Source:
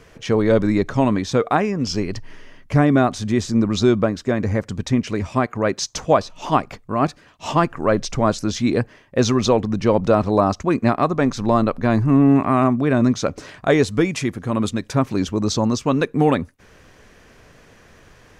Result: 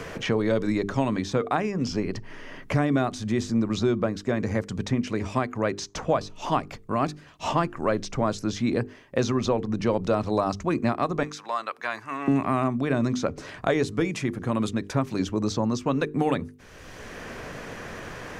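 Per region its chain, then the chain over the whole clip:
11.23–12.28 s: high-pass 1.3 kHz + band-stop 4.3 kHz, Q 19
whole clip: hum notches 50/100/150/200/250/300/350/400/450 Hz; three bands compressed up and down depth 70%; trim -6.5 dB

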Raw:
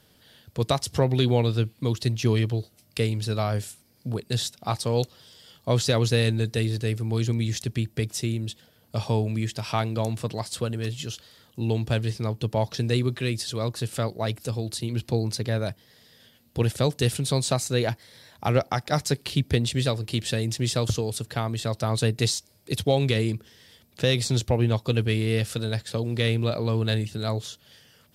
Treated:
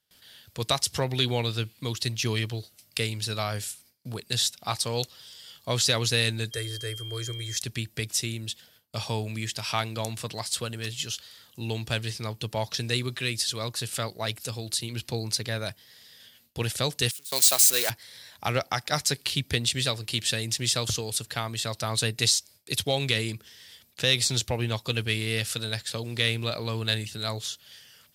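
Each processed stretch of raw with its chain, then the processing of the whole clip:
6.51–7.56 s: static phaser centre 820 Hz, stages 6 + whistle 3.2 kHz -42 dBFS
17.11–17.90 s: zero-crossing glitches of -19 dBFS + gate with hold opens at -13 dBFS, closes at -21 dBFS + high-pass 360 Hz
whole clip: bass shelf 200 Hz +4.5 dB; gate with hold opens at -47 dBFS; tilt shelf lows -8 dB, about 890 Hz; trim -2.5 dB

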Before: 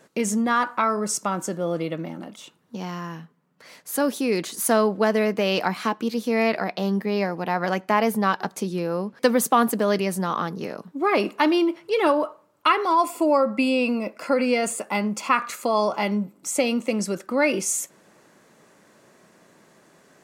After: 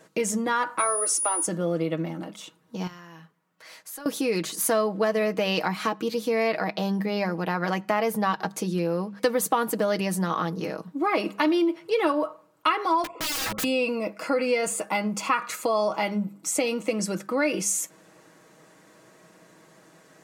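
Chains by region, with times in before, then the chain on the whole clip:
0.78–1.45 s: steep high-pass 270 Hz 72 dB/octave + whistle 9.7 kHz -26 dBFS
2.87–4.06 s: band-stop 470 Hz, Q 14 + compression 3:1, threshold -39 dBFS + peaking EQ 180 Hz -9.5 dB 2.4 oct
13.04–13.64 s: resonances exaggerated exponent 2 + low-pass 2.9 kHz 24 dB/octave + integer overflow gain 25 dB
whole clip: hum notches 50/100/150/200 Hz; comb 6.3 ms, depth 54%; compression 2:1, threshold -23 dBFS

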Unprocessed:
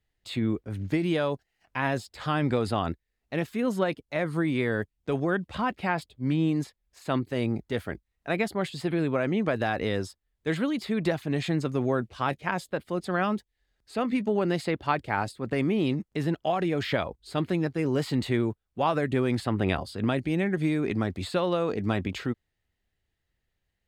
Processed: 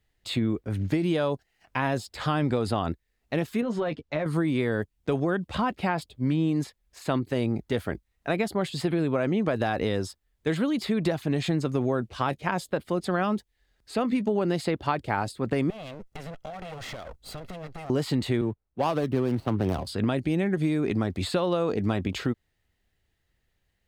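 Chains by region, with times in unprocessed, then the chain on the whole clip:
3.61–4.26 s: compression, threshold -28 dBFS + distance through air 110 m + doubling 13 ms -7 dB
15.70–17.90 s: comb filter that takes the minimum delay 1.5 ms + compression 10:1, threshold -40 dBFS
18.41–19.87 s: median filter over 25 samples + band-stop 7.1 kHz, Q 8.6 + three bands expanded up and down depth 40%
whole clip: dynamic bell 2 kHz, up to -4 dB, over -42 dBFS, Q 1.3; compression 2.5:1, threshold -29 dBFS; trim +5.5 dB

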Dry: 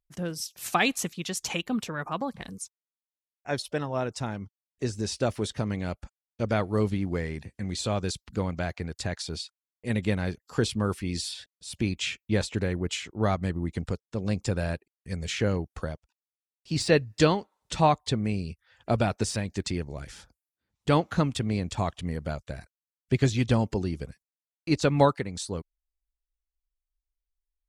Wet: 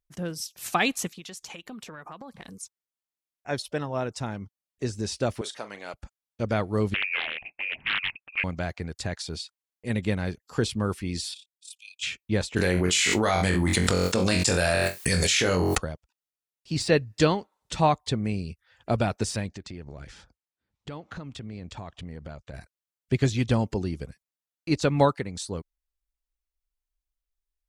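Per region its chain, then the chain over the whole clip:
1.07–2.63 s: bass shelf 200 Hz -6.5 dB + compression 12:1, threshold -37 dBFS
5.41–5.94 s: high-pass 570 Hz + doubling 40 ms -12.5 dB
6.94–8.44 s: frequency inversion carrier 2.6 kHz + loudspeaker Doppler distortion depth 0.6 ms
11.34–12.03 s: rippled Chebyshev high-pass 2.4 kHz, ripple 6 dB + AM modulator 35 Hz, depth 45%
12.56–15.78 s: tilt EQ +3 dB/octave + flutter echo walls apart 3.8 m, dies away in 0.23 s + level flattener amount 100%
19.48–22.54 s: compression, threshold -35 dBFS + distance through air 72 m
whole clip: none

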